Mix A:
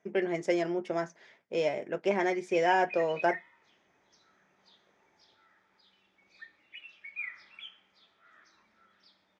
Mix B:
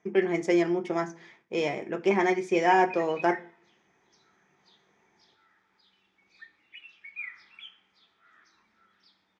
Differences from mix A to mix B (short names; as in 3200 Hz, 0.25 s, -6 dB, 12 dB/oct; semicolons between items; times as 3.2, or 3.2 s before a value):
speech: send on; master: add bell 590 Hz -9.5 dB 0.28 oct